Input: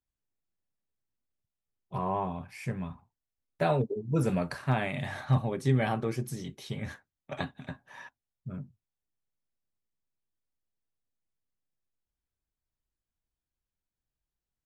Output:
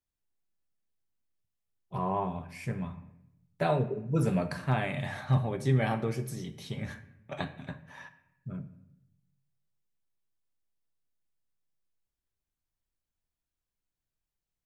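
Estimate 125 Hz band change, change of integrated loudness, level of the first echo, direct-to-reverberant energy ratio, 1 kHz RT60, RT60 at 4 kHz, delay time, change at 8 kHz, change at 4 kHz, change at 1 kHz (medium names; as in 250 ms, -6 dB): +0.5 dB, 0.0 dB, no echo, 9.5 dB, 0.80 s, 0.55 s, no echo, -1.0 dB, -0.5 dB, -0.5 dB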